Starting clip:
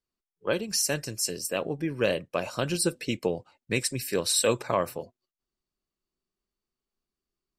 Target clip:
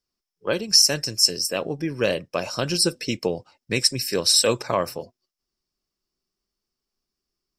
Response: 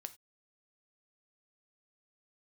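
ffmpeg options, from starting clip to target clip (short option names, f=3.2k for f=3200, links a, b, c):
-af "equalizer=f=5.3k:t=o:w=0.3:g=14,volume=3dB"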